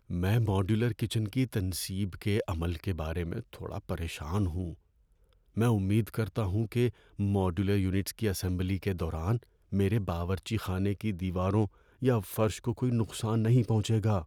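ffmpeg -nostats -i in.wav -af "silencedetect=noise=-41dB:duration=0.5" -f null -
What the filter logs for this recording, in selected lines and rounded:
silence_start: 4.74
silence_end: 5.57 | silence_duration: 0.83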